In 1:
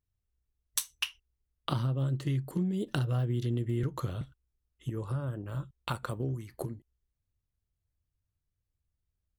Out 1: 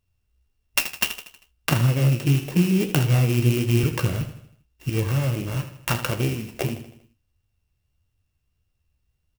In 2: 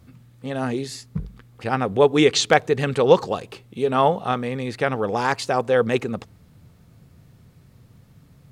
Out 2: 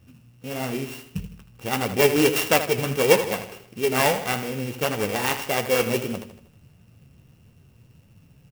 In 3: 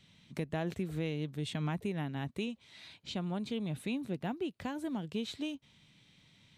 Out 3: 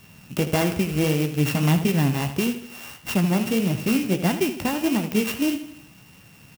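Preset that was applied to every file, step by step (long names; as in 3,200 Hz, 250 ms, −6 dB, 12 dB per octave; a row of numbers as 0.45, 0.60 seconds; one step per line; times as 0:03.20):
samples sorted by size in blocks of 16 samples
flanger 1.6 Hz, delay 8.5 ms, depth 9.3 ms, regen +51%
repeating echo 79 ms, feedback 49%, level −11 dB
converter with an unsteady clock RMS 0.033 ms
loudness normalisation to −23 LKFS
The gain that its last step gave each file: +14.5, +1.0, +18.5 decibels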